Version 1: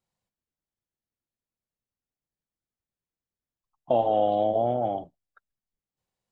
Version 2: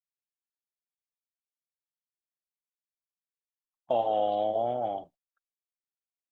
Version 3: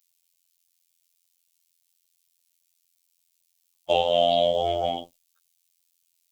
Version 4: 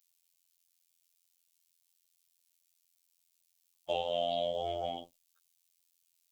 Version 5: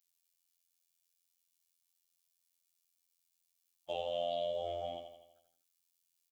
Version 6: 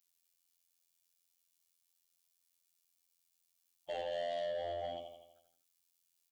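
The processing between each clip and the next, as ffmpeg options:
-af "agate=range=-21dB:threshold=-50dB:ratio=16:detection=peak,lowshelf=f=450:g=-11.5"
-af "afreqshift=-35,aexciter=amount=3.2:drive=9.5:freq=2.3k,afftfilt=real='hypot(re,im)*cos(PI*b)':imag='0':win_size=2048:overlap=0.75,volume=8.5dB"
-af "acompressor=threshold=-39dB:ratio=1.5,volume=-4dB"
-af "aecho=1:1:83|166|249|332|415|498|581:0.447|0.241|0.13|0.0703|0.038|0.0205|0.0111,volume=-6dB"
-af "asoftclip=type=tanh:threshold=-34dB,volume=1.5dB"

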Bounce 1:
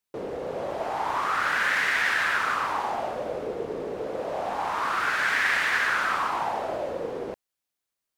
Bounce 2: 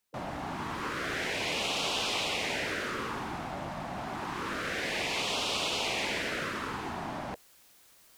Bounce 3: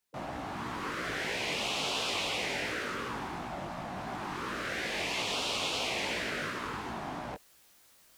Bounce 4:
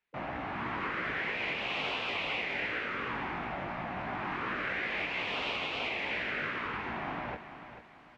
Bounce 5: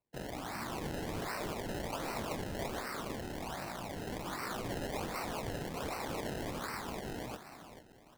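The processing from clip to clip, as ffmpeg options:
-filter_complex "[0:a]acrossover=split=9300[a][b];[b]acompressor=threshold=-60dB:ratio=4:attack=1:release=60[c];[a][c]amix=inputs=2:normalize=0,afftfilt=real='re*lt(hypot(re,im),0.0708)':imag='im*lt(hypot(re,im),0.0708)':win_size=1024:overlap=0.75,areverse,acompressor=mode=upward:threshold=-45dB:ratio=2.5,areverse,volume=4dB"
-af "flanger=delay=16:depth=5.2:speed=2.9,volume=1.5dB"
-af "lowpass=f=2.3k:t=q:w=2,alimiter=level_in=0.5dB:limit=-24dB:level=0:latency=1:release=458,volume=-0.5dB,aecho=1:1:442|884|1326|1768:0.282|0.104|0.0386|0.0143"
-af "acrusher=samples=26:mix=1:aa=0.000001:lfo=1:lforange=26:lforate=1.3,volume=-4dB"

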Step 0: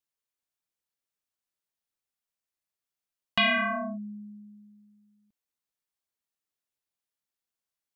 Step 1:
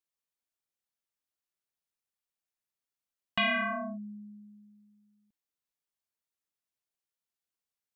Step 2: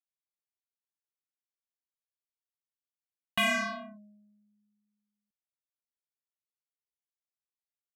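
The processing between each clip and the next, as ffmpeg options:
-filter_complex "[0:a]acrossover=split=3800[a][b];[b]acompressor=threshold=-49dB:ratio=4:attack=1:release=60[c];[a][c]amix=inputs=2:normalize=0,volume=-3.5dB"
-af "aeval=exprs='0.0944*(cos(1*acos(clip(val(0)/0.0944,-1,1)))-cos(1*PI/2))+0.0119*(cos(7*acos(clip(val(0)/0.0944,-1,1)))-cos(7*PI/2))':c=same"

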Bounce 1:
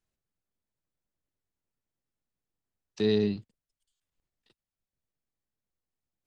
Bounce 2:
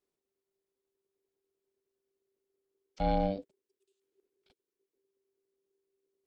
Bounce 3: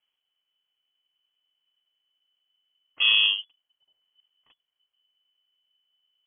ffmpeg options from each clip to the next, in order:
-filter_complex "[0:a]asubboost=boost=2.5:cutoff=150,acrossover=split=2700[a][b];[b]acompressor=threshold=-54dB:ratio=4:attack=1:release=60[c];[a][c]amix=inputs=2:normalize=0,aeval=exprs='val(0)*sin(2*PI*390*n/s)':c=same"
-af "lowpass=f=2.9k:t=q:w=0.5098,lowpass=f=2.9k:t=q:w=0.6013,lowpass=f=2.9k:t=q:w=0.9,lowpass=f=2.9k:t=q:w=2.563,afreqshift=-3400,volume=8dB"

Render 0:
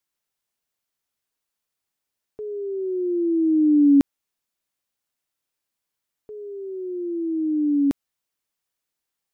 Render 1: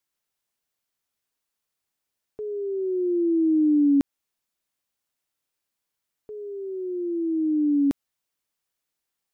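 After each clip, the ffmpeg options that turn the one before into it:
-af "acompressor=threshold=-18dB:ratio=3"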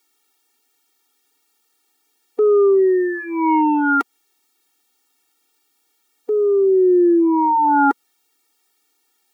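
-filter_complex "[0:a]acrossover=split=120[a][b];[b]aeval=exprs='0.224*sin(PI/2*5.01*val(0)/0.224)':c=same[c];[a][c]amix=inputs=2:normalize=0,afftfilt=real='re*eq(mod(floor(b*sr/1024/240),2),1)':imag='im*eq(mod(floor(b*sr/1024/240),2),1)':win_size=1024:overlap=0.75,volume=2dB"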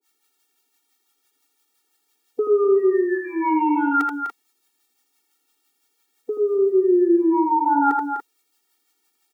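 -filter_complex "[0:a]acrossover=split=610[a][b];[a]aeval=exprs='val(0)*(1-1/2+1/2*cos(2*PI*5.9*n/s))':c=same[c];[b]aeval=exprs='val(0)*(1-1/2-1/2*cos(2*PI*5.9*n/s))':c=same[d];[c][d]amix=inputs=2:normalize=0,asplit=2[e][f];[f]aecho=0:1:81.63|250.7|288.6:0.562|0.316|0.251[g];[e][g]amix=inputs=2:normalize=0"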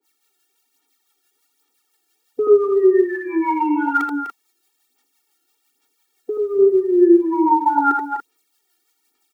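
-af "aphaser=in_gain=1:out_gain=1:delay=2.9:decay=0.52:speed=1.2:type=sinusoidal"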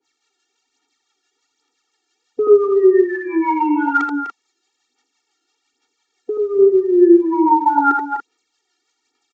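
-af "aresample=16000,aresample=44100,volume=2dB"

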